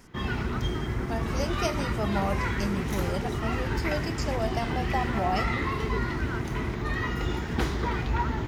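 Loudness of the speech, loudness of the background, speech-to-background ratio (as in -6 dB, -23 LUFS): -33.0 LUFS, -30.0 LUFS, -3.0 dB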